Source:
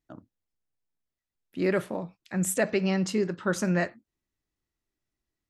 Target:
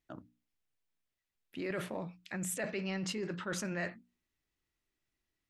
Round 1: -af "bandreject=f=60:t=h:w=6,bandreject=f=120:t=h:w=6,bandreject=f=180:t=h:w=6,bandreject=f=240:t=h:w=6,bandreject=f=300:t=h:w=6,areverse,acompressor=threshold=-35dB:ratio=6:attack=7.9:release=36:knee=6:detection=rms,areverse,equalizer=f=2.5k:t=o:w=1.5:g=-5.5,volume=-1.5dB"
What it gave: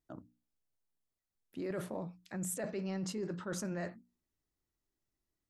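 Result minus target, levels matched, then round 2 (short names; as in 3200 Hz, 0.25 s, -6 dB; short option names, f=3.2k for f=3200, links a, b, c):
2000 Hz band -6.5 dB
-af "bandreject=f=60:t=h:w=6,bandreject=f=120:t=h:w=6,bandreject=f=180:t=h:w=6,bandreject=f=240:t=h:w=6,bandreject=f=300:t=h:w=6,areverse,acompressor=threshold=-35dB:ratio=6:attack=7.9:release=36:knee=6:detection=rms,areverse,equalizer=f=2.5k:t=o:w=1.5:g=6,volume=-1.5dB"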